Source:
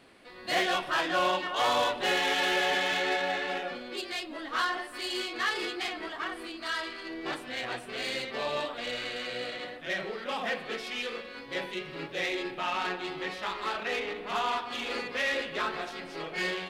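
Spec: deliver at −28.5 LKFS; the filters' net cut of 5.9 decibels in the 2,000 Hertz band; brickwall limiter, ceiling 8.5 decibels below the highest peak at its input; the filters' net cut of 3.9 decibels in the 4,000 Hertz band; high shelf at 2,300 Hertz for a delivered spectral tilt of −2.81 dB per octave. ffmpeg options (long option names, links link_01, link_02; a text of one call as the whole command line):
ffmpeg -i in.wav -af "equalizer=frequency=2000:width_type=o:gain=-8,highshelf=frequency=2300:gain=3.5,equalizer=frequency=4000:width_type=o:gain=-5,volume=8dB,alimiter=limit=-18dB:level=0:latency=1" out.wav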